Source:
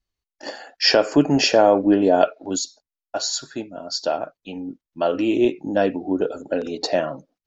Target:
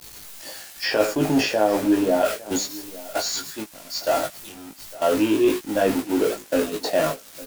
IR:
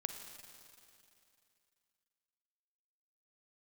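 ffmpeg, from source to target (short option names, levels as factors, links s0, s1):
-filter_complex "[0:a]aeval=exprs='val(0)+0.5*0.0668*sgn(val(0))':c=same,agate=range=0.2:threshold=0.0794:ratio=16:detection=peak,acrossover=split=2600[s0][s1];[s1]acompressor=threshold=0.02:ratio=4:attack=1:release=60[s2];[s0][s2]amix=inputs=2:normalize=0,highshelf=f=4900:g=12,bandreject=f=67.56:t=h:w=4,bandreject=f=135.12:t=h:w=4,bandreject=f=202.68:t=h:w=4,areverse,acompressor=threshold=0.158:ratio=6,areverse,aeval=exprs='val(0)*gte(abs(val(0)),0.0133)':c=same,asplit=2[s3][s4];[s4]adelay=19,volume=0.708[s5];[s3][s5]amix=inputs=2:normalize=0,aecho=1:1:857:0.106,volume=0.841"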